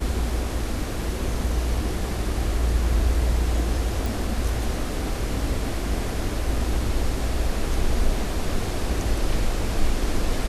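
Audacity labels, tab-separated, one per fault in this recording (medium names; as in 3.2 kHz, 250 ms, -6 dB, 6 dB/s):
4.060000	4.060000	pop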